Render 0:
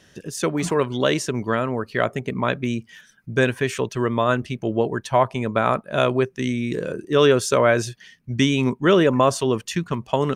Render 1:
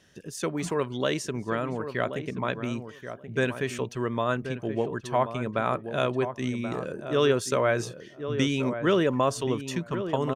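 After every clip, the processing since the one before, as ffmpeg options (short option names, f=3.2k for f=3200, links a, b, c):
-filter_complex "[0:a]asplit=2[a][b];[b]adelay=1080,lowpass=f=1.5k:p=1,volume=-9dB,asplit=2[c][d];[d]adelay=1080,lowpass=f=1.5k:p=1,volume=0.15[e];[a][c][e]amix=inputs=3:normalize=0,volume=-7dB"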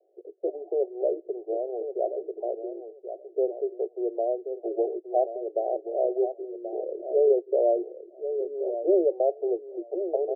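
-af "asuperpass=centerf=510:order=20:qfactor=1.2,volume=3dB"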